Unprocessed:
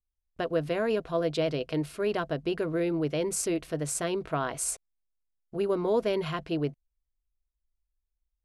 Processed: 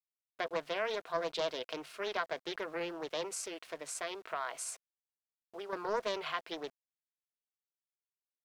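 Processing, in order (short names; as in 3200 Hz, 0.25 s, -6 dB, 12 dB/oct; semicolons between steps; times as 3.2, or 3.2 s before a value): 3.34–5.73 compressor, threshold -29 dBFS, peak gain reduction 6.5 dB; HPF 760 Hz 12 dB/oct; bell 11000 Hz -10 dB 1.3 oct; sample gate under -57.5 dBFS; Doppler distortion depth 0.27 ms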